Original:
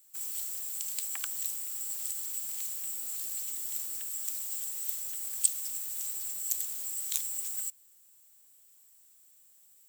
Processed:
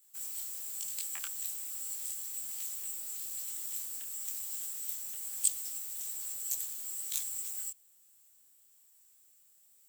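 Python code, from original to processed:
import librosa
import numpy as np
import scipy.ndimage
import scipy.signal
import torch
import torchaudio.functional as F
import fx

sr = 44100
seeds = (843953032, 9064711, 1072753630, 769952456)

y = fx.detune_double(x, sr, cents=38)
y = F.gain(torch.from_numpy(y), 1.0).numpy()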